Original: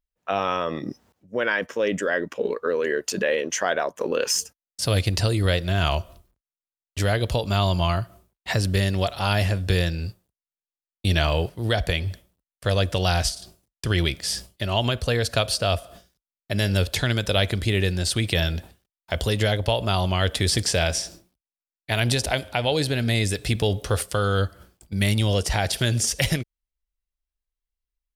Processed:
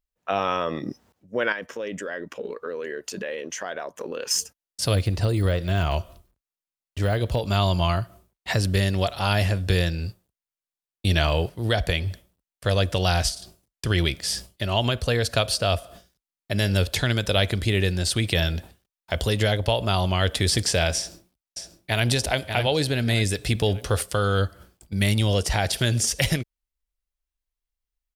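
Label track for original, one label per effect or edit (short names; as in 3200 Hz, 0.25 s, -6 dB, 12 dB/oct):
1.520000	4.310000	compressor 2:1, threshold -34 dBFS
4.950000	7.500000	de-esser amount 90%
20.970000	22.070000	echo throw 0.59 s, feedback 35%, level -6.5 dB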